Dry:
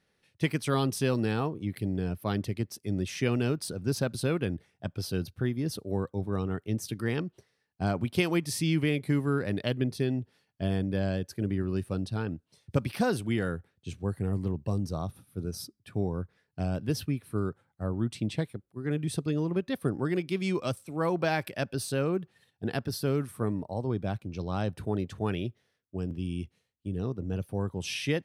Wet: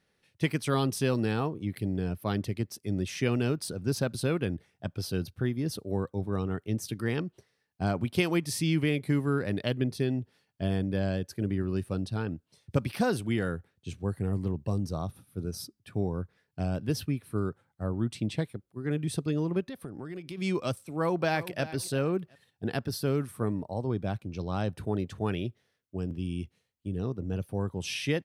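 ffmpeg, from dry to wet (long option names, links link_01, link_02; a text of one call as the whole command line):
ffmpeg -i in.wav -filter_complex "[0:a]asplit=3[link_01][link_02][link_03];[link_01]afade=type=out:start_time=19.64:duration=0.02[link_04];[link_02]acompressor=threshold=-36dB:ratio=6:attack=3.2:release=140:knee=1:detection=peak,afade=type=in:start_time=19.64:duration=0.02,afade=type=out:start_time=20.37:duration=0.02[link_05];[link_03]afade=type=in:start_time=20.37:duration=0.02[link_06];[link_04][link_05][link_06]amix=inputs=3:normalize=0,asplit=2[link_07][link_08];[link_08]afade=type=in:start_time=20.98:duration=0.01,afade=type=out:start_time=21.63:duration=0.01,aecho=0:1:360|720:0.177828|0.0355656[link_09];[link_07][link_09]amix=inputs=2:normalize=0" out.wav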